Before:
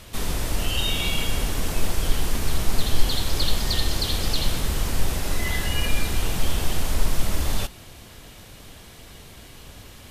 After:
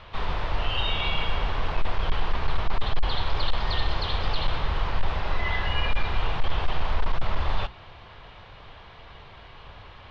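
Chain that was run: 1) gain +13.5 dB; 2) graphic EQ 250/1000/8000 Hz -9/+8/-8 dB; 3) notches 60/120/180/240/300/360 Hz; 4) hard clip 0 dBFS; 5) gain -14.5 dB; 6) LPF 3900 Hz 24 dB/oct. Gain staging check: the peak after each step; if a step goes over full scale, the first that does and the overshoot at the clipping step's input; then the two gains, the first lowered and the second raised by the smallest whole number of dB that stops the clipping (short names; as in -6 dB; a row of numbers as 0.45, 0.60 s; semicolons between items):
+9.0, +9.0, +9.0, 0.0, -14.5, -14.0 dBFS; step 1, 9.0 dB; step 1 +4.5 dB, step 5 -5.5 dB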